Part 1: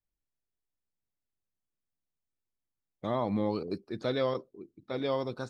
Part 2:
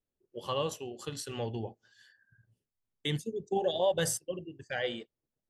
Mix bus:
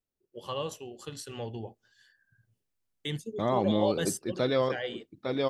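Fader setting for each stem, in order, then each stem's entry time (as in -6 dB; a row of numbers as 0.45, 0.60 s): +3.0, -2.0 dB; 0.35, 0.00 s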